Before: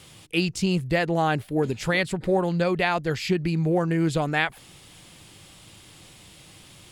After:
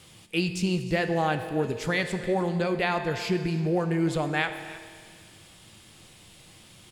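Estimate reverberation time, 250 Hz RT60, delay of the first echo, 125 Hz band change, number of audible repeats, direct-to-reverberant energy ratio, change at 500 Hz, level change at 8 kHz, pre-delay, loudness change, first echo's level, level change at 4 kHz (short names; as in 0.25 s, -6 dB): 1.9 s, 1.9 s, 0.313 s, -3.5 dB, 1, 7.0 dB, -2.5 dB, -3.0 dB, 5 ms, -3.0 dB, -18.0 dB, -3.0 dB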